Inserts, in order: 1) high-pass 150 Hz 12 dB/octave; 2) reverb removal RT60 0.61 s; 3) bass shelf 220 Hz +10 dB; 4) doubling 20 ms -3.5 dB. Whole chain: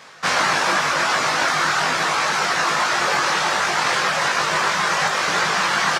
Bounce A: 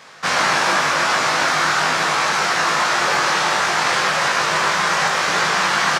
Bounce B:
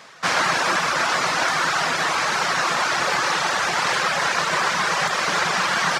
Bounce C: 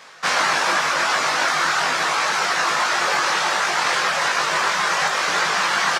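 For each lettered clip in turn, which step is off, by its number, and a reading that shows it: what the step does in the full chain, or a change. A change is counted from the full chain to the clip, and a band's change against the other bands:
2, loudness change +1.5 LU; 4, loudness change -1.5 LU; 3, 125 Hz band -6.5 dB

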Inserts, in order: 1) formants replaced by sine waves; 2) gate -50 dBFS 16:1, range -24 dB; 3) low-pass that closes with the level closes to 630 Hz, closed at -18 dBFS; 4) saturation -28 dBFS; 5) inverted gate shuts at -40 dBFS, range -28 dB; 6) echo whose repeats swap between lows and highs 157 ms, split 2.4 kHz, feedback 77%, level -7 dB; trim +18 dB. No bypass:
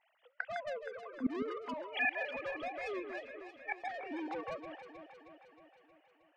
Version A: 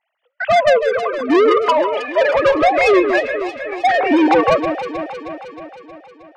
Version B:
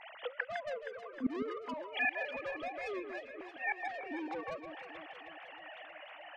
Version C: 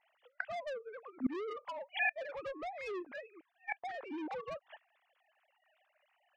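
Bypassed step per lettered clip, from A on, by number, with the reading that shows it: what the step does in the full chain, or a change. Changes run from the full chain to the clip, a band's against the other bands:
5, momentary loudness spread change -5 LU; 2, momentary loudness spread change -4 LU; 6, echo-to-direct -5.5 dB to none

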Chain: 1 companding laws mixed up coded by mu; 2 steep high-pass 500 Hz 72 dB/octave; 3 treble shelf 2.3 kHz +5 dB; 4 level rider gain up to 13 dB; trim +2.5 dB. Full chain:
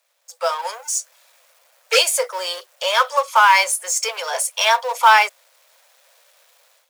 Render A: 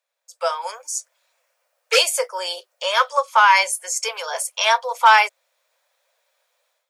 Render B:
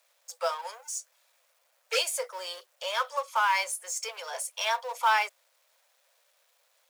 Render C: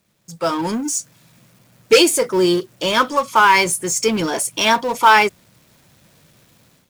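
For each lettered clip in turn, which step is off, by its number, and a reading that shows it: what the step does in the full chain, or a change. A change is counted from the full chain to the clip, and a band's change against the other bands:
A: 1, distortion -20 dB; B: 4, loudness change -12.0 LU; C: 2, 500 Hz band +5.5 dB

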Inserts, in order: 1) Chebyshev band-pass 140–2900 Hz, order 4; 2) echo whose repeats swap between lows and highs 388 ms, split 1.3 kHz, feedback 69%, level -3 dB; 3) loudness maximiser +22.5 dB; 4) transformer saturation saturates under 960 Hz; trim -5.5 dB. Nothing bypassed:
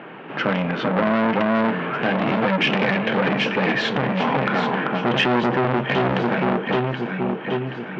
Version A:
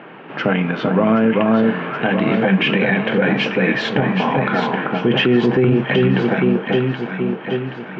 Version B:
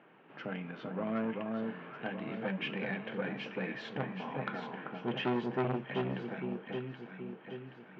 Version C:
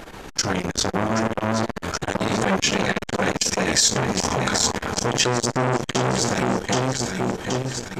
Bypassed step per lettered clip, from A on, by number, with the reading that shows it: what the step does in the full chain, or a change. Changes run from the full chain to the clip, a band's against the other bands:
4, crest factor change -4.0 dB; 3, crest factor change +6.0 dB; 1, 4 kHz band +6.0 dB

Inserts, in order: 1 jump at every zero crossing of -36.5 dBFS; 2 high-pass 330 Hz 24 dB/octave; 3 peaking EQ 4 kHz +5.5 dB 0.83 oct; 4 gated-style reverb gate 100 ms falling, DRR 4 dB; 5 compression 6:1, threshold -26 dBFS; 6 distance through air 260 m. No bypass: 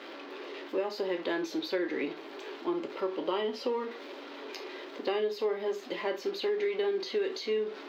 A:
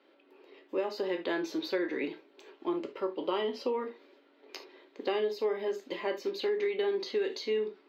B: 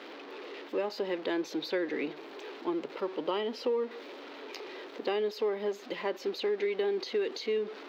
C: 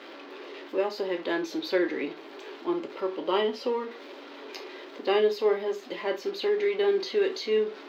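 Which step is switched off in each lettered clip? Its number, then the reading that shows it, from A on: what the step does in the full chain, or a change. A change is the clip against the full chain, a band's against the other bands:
1, distortion -18 dB; 4, momentary loudness spread change +1 LU; 5, mean gain reduction 2.0 dB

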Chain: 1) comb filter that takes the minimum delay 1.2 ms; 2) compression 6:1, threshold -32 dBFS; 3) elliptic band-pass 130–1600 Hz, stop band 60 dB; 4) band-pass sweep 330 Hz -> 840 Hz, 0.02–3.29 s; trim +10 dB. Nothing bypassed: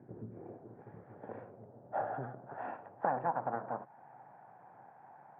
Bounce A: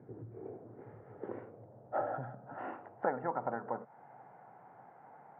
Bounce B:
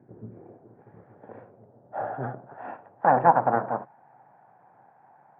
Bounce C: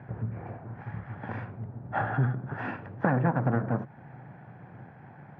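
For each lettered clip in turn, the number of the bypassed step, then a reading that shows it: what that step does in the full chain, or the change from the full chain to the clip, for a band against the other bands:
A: 1, 1 kHz band -3.0 dB; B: 2, mean gain reduction 3.5 dB; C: 4, 125 Hz band +12.0 dB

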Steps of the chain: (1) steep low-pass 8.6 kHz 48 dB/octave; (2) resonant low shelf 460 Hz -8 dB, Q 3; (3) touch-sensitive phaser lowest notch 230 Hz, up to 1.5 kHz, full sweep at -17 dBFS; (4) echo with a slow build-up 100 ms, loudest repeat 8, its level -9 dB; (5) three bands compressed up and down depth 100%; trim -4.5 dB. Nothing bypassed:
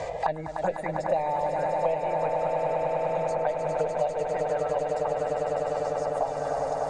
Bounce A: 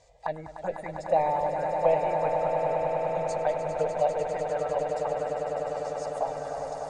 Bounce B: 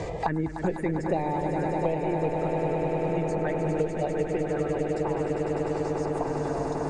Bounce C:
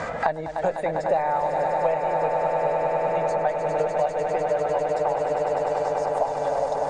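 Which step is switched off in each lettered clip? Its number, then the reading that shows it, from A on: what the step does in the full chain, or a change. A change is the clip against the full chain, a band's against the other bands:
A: 5, momentary loudness spread change +7 LU; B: 2, 250 Hz band +12.5 dB; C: 3, 125 Hz band -2.5 dB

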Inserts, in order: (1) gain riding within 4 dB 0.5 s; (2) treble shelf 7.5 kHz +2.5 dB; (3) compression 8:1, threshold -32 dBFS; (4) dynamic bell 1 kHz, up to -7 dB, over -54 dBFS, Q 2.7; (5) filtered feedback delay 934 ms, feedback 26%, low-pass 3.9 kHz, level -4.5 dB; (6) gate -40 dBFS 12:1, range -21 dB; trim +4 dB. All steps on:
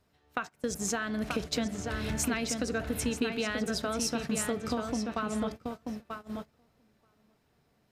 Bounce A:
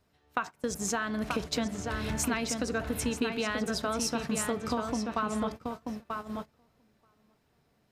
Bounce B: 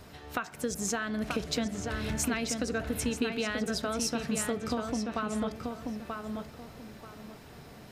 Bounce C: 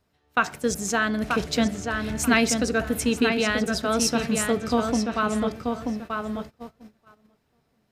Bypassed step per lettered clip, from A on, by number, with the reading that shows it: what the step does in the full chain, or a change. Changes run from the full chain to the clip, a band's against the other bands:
4, momentary loudness spread change -2 LU; 6, momentary loudness spread change +7 LU; 3, mean gain reduction 4.5 dB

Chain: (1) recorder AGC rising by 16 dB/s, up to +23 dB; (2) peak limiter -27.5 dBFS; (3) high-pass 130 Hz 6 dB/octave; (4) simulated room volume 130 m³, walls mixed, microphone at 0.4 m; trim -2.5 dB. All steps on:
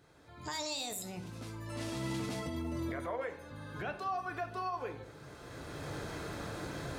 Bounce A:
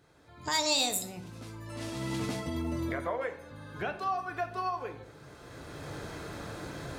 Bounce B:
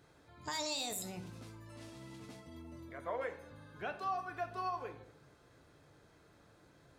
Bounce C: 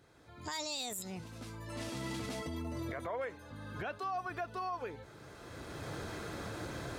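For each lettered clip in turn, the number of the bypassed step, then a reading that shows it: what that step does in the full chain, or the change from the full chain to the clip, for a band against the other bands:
2, mean gain reduction 2.0 dB; 1, crest factor change +4.0 dB; 4, echo-to-direct -7.0 dB to none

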